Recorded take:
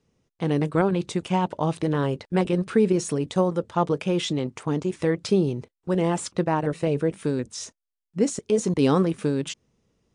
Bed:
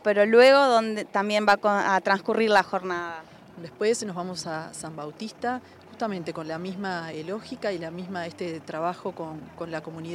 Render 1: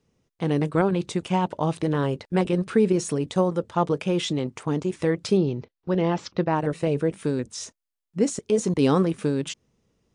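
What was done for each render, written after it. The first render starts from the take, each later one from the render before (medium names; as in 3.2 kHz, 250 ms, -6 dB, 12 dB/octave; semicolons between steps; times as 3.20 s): 5.37–6.54 s: steep low-pass 5.6 kHz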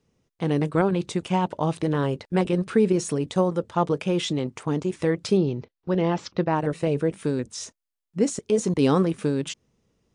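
no audible change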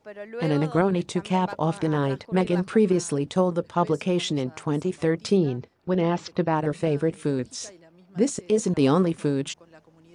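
add bed -18.5 dB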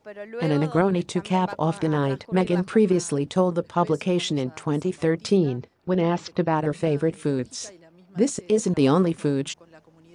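trim +1 dB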